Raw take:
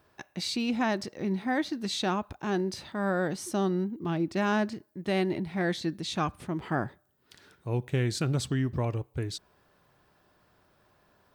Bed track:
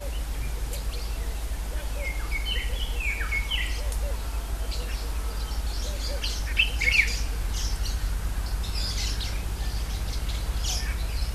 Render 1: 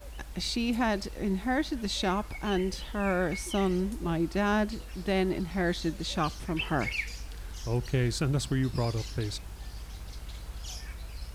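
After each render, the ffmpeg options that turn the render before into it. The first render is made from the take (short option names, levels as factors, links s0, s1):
-filter_complex "[1:a]volume=0.251[s0];[0:a][s0]amix=inputs=2:normalize=0"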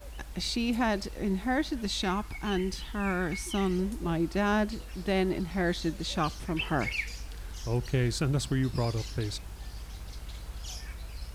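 -filter_complex "[0:a]asettb=1/sr,asplit=3[s0][s1][s2];[s0]atrim=end=1.904[s3];[s1]atrim=start=1.9:end=3.79,asetpts=PTS-STARTPTS,afade=t=in:d=0.004:c=qsin,afade=t=out:st=1.886:d=0.004:c=qsin,equalizer=f=560:w=2.9:g=-10.5[s4];[s2]atrim=start=3.786[s5];[s3][s4]acrossfade=d=0.004:c1=hsin:c2=qsin[s6];[s6][s5]acrossfade=d=0.004:c1=qsin:c2=hsin"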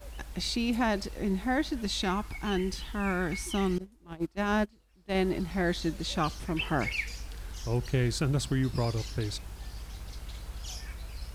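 -filter_complex "[0:a]asettb=1/sr,asplit=3[s0][s1][s2];[s0]atrim=end=3.784[s3];[s1]atrim=start=3.78:end=5.15,asetpts=PTS-STARTPTS,afade=t=in:d=0.004:c=qsin,afade=t=out:st=1.366:d=0.004:c=qsin,agate=range=0.0631:threshold=0.0447:ratio=16:release=100:detection=peak[s4];[s2]atrim=start=5.146[s5];[s3][s4]acrossfade=d=0.004:c1=hsin:c2=qsin[s6];[s6][s5]acrossfade=d=0.004:c1=qsin:c2=hsin"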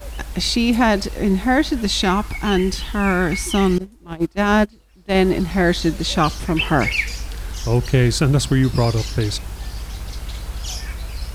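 -af "volume=3.98"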